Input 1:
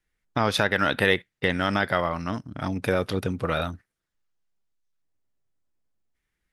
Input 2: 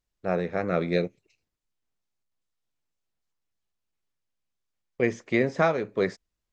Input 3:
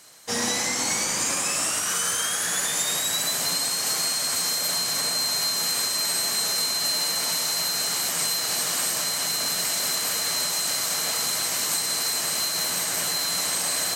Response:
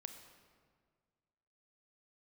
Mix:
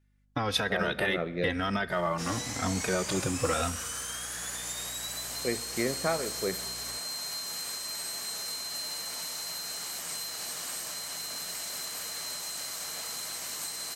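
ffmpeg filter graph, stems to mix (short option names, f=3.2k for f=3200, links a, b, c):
-filter_complex "[0:a]alimiter=limit=-14dB:level=0:latency=1:release=105,asplit=2[a][b];[b]adelay=2.9,afreqshift=-0.98[c];[a][c]amix=inputs=2:normalize=1,volume=0dB,asplit=2[d][e];[e]volume=-7dB[f];[1:a]highshelf=f=5.9k:g=-11,aeval=exprs='val(0)+0.00708*(sin(2*PI*60*n/s)+sin(2*PI*2*60*n/s)/2+sin(2*PI*3*60*n/s)/3+sin(2*PI*4*60*n/s)/4+sin(2*PI*5*60*n/s)/5)':c=same,adelay=450,volume=-9dB,asplit=2[g][h];[h]volume=-3.5dB[i];[2:a]adelay=1900,volume=-11.5dB[j];[3:a]atrim=start_sample=2205[k];[f][i]amix=inputs=2:normalize=0[l];[l][k]afir=irnorm=-1:irlink=0[m];[d][g][j][m]amix=inputs=4:normalize=0,lowshelf=f=200:g=-3,aeval=exprs='val(0)+0.000447*(sin(2*PI*50*n/s)+sin(2*PI*2*50*n/s)/2+sin(2*PI*3*50*n/s)/3+sin(2*PI*4*50*n/s)/4+sin(2*PI*5*50*n/s)/5)':c=same"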